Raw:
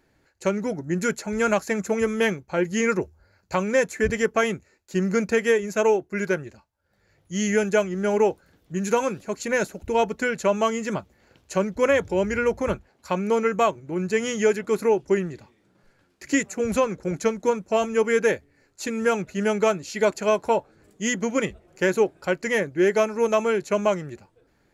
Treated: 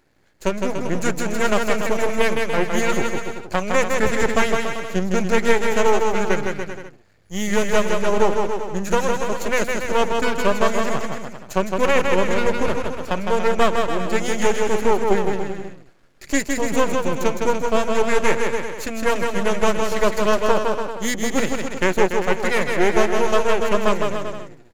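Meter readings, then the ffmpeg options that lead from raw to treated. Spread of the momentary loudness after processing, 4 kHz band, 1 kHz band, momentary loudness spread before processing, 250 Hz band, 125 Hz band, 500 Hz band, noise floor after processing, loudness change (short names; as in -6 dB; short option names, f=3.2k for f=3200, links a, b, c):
8 LU, +7.0 dB, +5.5 dB, 8 LU, +2.0 dB, +2.5 dB, +2.0 dB, -46 dBFS, +2.5 dB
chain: -af "aeval=exprs='max(val(0),0)':c=same,aecho=1:1:160|288|390.4|472.3|537.9:0.631|0.398|0.251|0.158|0.1,volume=5dB"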